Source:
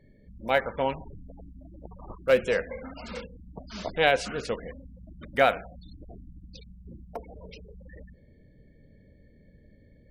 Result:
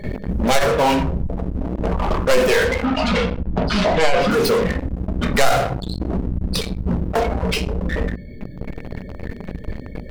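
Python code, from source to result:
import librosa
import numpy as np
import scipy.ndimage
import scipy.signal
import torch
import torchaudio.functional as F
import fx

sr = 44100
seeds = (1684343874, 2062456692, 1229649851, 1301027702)

p1 = fx.tracing_dist(x, sr, depth_ms=0.41)
p2 = fx.dereverb_blind(p1, sr, rt60_s=1.9)
p3 = fx.room_shoebox(p2, sr, seeds[0], volume_m3=210.0, walls='furnished', distance_m=1.3)
p4 = fx.fuzz(p3, sr, gain_db=41.0, gate_db=-49.0)
p5 = p3 + F.gain(torch.from_numpy(p4), -11.0).numpy()
p6 = fx.lowpass(p5, sr, hz=4200.0, slope=12, at=(2.84, 4.3), fade=0.02)
y = fx.env_flatten(p6, sr, amount_pct=50)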